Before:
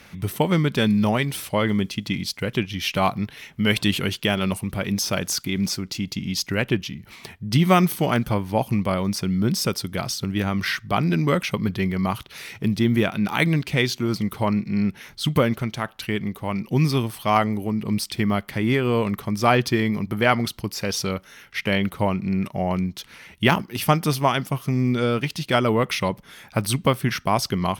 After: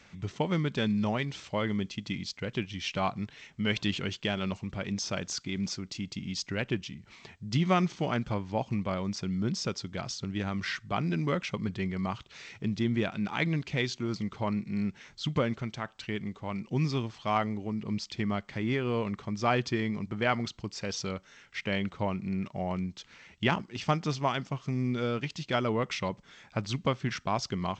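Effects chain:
level −9 dB
G.722 64 kbit/s 16,000 Hz

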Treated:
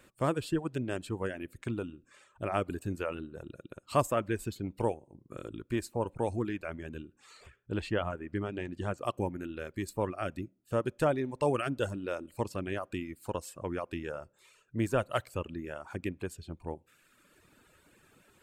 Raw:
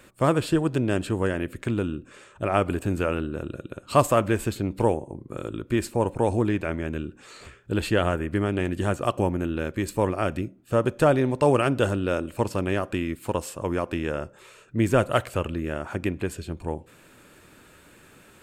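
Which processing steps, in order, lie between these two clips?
reverb reduction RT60 1.1 s
0:07.56–0:08.98: high-frequency loss of the air 72 metres
level −8 dB

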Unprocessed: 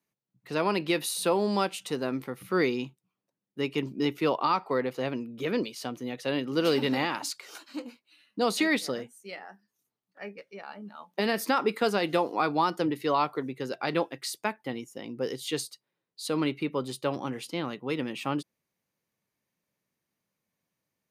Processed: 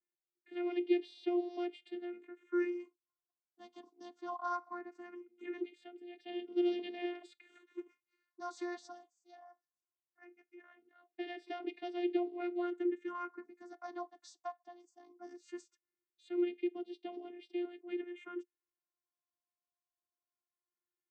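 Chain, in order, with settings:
channel vocoder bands 16, saw 352 Hz
all-pass phaser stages 4, 0.19 Hz, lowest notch 390–1,200 Hz
level −6 dB

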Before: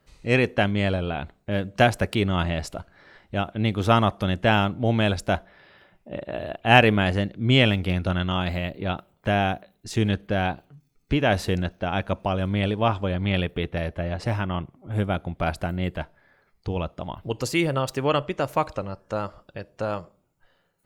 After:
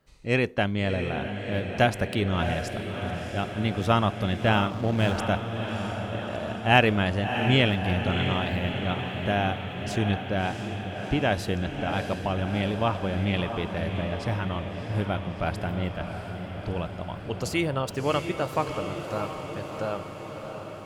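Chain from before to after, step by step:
feedback delay with all-pass diffusion 667 ms, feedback 68%, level −7.5 dB
0:04.70–0:05.18: slack as between gear wheels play −27.5 dBFS
level −3.5 dB

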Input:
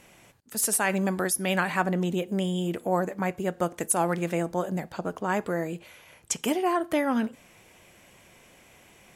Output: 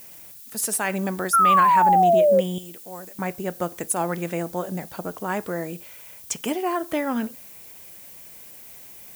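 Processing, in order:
0:01.33–0:02.41: sound drawn into the spectrogram fall 520–1,400 Hz −16 dBFS
0:02.58–0:03.19: first-order pre-emphasis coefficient 0.8
background noise violet −44 dBFS

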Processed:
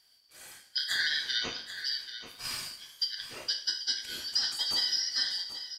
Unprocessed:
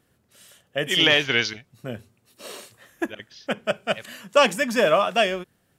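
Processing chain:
band-splitting scrambler in four parts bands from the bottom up 4321
downward compressor 6 to 1, threshold −30 dBFS, peak gain reduction 17 dB
on a send: single-tap delay 786 ms −11.5 dB
on the sum: coupled-rooms reverb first 0.51 s, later 1.7 s, DRR 2 dB

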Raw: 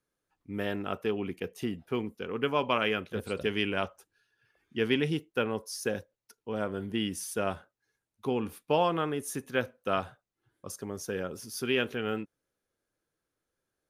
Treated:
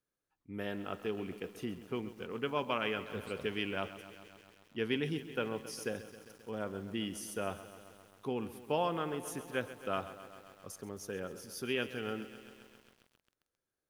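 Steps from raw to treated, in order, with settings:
feedback echo at a low word length 133 ms, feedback 80%, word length 8 bits, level −14 dB
level −6.5 dB

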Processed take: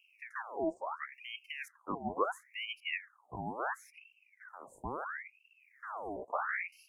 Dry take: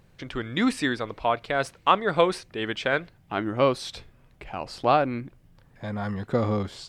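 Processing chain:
pitch shifter gated in a rhythm −8.5 semitones, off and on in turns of 560 ms
Chebyshev band-stop filter 470–7,500 Hz, order 5
ring modulator whose carrier an LFO sweeps 1,600 Hz, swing 70%, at 0.73 Hz
level −6.5 dB

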